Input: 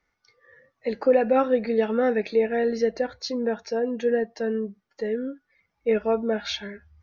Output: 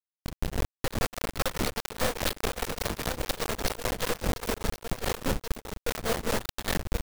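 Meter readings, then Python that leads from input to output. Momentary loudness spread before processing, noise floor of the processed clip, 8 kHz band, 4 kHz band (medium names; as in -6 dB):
11 LU, under -85 dBFS, no reading, +3.0 dB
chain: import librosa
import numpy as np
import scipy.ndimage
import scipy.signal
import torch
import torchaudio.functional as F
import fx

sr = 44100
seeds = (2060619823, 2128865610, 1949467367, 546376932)

y = fx.bin_compress(x, sr, power=0.4)
y = fx.curve_eq(y, sr, hz=(110.0, 250.0, 4700.0), db=(0, -27, -4))
y = y + 10.0 ** (-11.5 / 20.0) * np.pad(y, (int(175 * sr / 1000.0), 0))[:len(y)]
y = fx.schmitt(y, sr, flips_db=-40.5)
y = fx.quant_companded(y, sr, bits=2)
y = fx.high_shelf(y, sr, hz=5100.0, db=5.0)
y = fx.over_compress(y, sr, threshold_db=-29.0, ratio=-1.0)
y = y + 10.0 ** (-8.0 / 20.0) * np.pad(y, (int(1076 * sr / 1000.0), 0))[:len(y)]
y = y * np.abs(np.cos(np.pi * 4.9 * np.arange(len(y)) / sr))
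y = y * librosa.db_to_amplitude(5.0)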